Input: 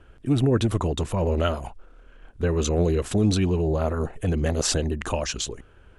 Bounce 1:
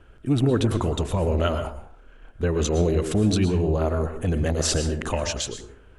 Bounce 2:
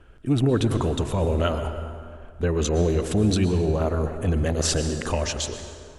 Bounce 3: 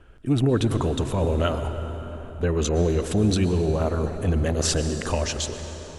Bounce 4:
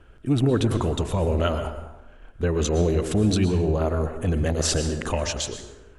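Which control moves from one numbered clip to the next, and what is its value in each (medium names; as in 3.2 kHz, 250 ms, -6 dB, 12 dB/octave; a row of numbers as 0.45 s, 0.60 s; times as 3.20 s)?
plate-style reverb, RT60: 0.5 s, 2.2 s, 4.8 s, 1 s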